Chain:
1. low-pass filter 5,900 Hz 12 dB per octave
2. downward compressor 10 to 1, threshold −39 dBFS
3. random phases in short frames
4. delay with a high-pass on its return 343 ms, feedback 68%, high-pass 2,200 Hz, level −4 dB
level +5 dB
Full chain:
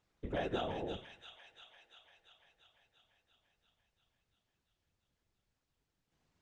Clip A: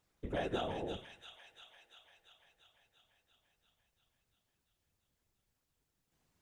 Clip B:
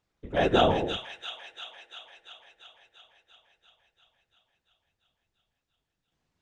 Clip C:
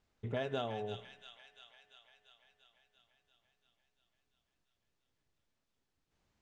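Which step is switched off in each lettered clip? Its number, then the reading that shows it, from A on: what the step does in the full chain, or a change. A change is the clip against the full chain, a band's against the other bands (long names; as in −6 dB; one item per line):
1, 8 kHz band +4.5 dB
2, change in crest factor +2.0 dB
3, 125 Hz band +3.5 dB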